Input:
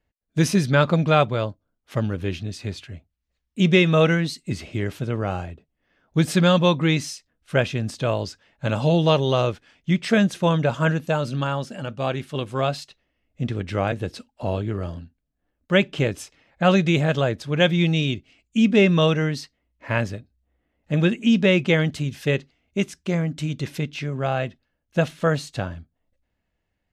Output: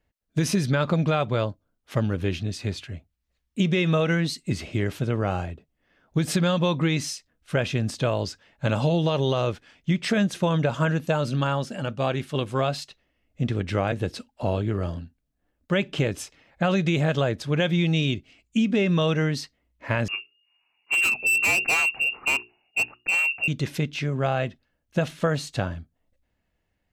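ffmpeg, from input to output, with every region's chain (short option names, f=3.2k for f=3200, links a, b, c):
-filter_complex "[0:a]asettb=1/sr,asplit=3[a][b][c];[a]atrim=end=20.084[d];[b]atrim=start=20.08:end=23.48,asetpts=PTS-STARTPTS,afade=t=in:d=0.004:c=qsin,afade=t=out:st=3.396:d=0.004:c=qsin,lowpass=f=2.5k:t=q:w=0.5098,lowpass=f=2.5k:t=q:w=0.6013,lowpass=f=2.5k:t=q:w=0.9,lowpass=f=2.5k:t=q:w=2.563,afreqshift=-2900,bandreject=f=60:t=h:w=6,bandreject=f=120:t=h:w=6,bandreject=f=180:t=h:w=6,bandreject=f=240:t=h:w=6,bandreject=f=300:t=h:w=6,bandreject=f=360:t=h:w=6,bandreject=f=420:t=h:w=6,volume=19.5dB,asoftclip=hard,volume=-19.5dB[e];[c]atrim=start=23.476[f];[d][e]acrossfade=d=0.004:c1=hsin:c2=qsin[g];[g][f]acrossfade=d=0.004:c1=qsin:c2=hsin,alimiter=limit=-11dB:level=0:latency=1:release=78,acompressor=threshold=-20dB:ratio=6,volume=1.5dB"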